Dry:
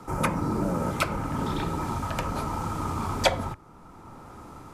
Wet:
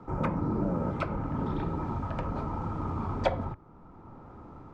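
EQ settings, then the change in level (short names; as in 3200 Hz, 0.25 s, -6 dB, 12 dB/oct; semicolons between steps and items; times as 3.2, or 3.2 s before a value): tape spacing loss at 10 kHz 33 dB; bell 2600 Hz -3 dB 2.2 oct; -1.0 dB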